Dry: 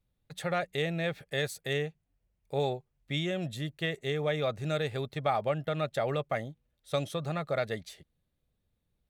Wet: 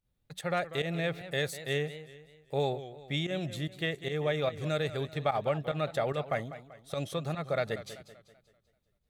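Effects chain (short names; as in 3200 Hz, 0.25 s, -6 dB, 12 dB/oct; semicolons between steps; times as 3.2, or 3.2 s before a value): pump 147 bpm, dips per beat 1, -14 dB, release 92 ms; warbling echo 0.193 s, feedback 44%, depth 130 cents, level -14 dB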